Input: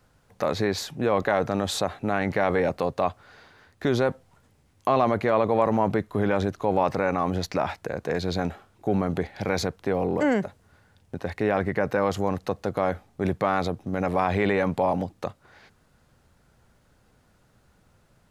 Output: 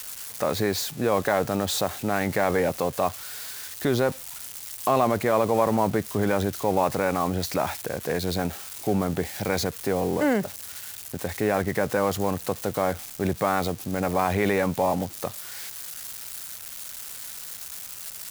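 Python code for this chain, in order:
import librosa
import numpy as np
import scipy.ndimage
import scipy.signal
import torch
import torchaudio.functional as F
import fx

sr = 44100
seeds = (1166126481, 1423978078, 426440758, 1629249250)

y = x + 0.5 * 10.0 ** (-26.0 / 20.0) * np.diff(np.sign(x), prepend=np.sign(x[:1]))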